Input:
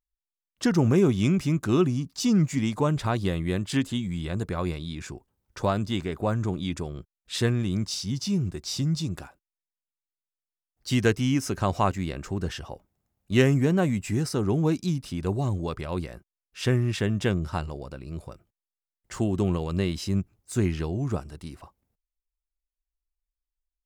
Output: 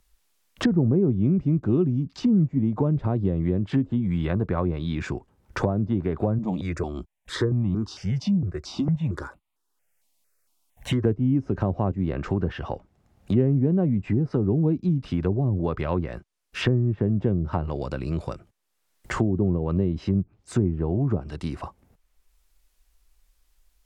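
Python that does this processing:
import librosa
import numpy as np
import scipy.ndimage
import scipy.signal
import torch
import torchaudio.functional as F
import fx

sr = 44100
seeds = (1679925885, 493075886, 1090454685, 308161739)

y = fx.phaser_held(x, sr, hz=4.4, low_hz=390.0, high_hz=1600.0, at=(6.38, 11.04))
y = fx.high_shelf(y, sr, hz=7300.0, db=-11.5, at=(12.16, 14.9))
y = fx.env_lowpass_down(y, sr, base_hz=490.0, full_db=-22.5)
y = fx.band_squash(y, sr, depth_pct=70)
y = y * 10.0 ** (3.0 / 20.0)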